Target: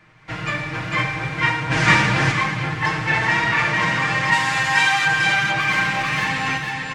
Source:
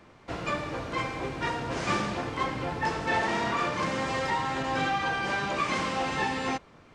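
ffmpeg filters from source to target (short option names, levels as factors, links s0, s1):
-filter_complex "[0:a]asplit=3[s0][s1][s2];[s0]afade=t=out:st=4.31:d=0.02[s3];[s1]aemphasis=mode=production:type=riaa,afade=t=in:st=4.31:d=0.02,afade=t=out:st=5.05:d=0.02[s4];[s2]afade=t=in:st=5.05:d=0.02[s5];[s3][s4][s5]amix=inputs=3:normalize=0,asettb=1/sr,asplit=3[s6][s7][s8];[s6]atrim=end=5.604[s9];[s7]atrim=start=5.6:end=6.28,asetpts=PTS-STARTPTS,afade=t=in:d=0.004:c=qsin,afade=t=out:st=0.676:d=0.004:c=qsin,asoftclip=type=hard:threshold=0.0422[s10];[s8]atrim=start=6.276[s11];[s9][s10]acrossfade=d=0.004:c1=hsin:c2=qsin[s12];[s12][s11]acrossfade=d=0.004:c1=qsin:c2=hsin,aecho=1:1:449:0.708,asplit=3[s13][s14][s15];[s13]afade=t=out:st=1.7:d=0.02[s16];[s14]acontrast=83,afade=t=in:st=1.7:d=0.02,afade=t=out:st=2.31:d=0.02[s17];[s15]afade=t=in:st=2.31:d=0.02[s18];[s16][s17][s18]amix=inputs=3:normalize=0,aecho=1:1:6.4:0.68,dynaudnorm=f=160:g=3:m=1.78,equalizer=f=125:t=o:w=1:g=7,equalizer=f=250:t=o:w=1:g=-4,equalizer=f=500:t=o:w=1:g=-6,equalizer=f=2000:t=o:w=1:g=9,volume=0.794"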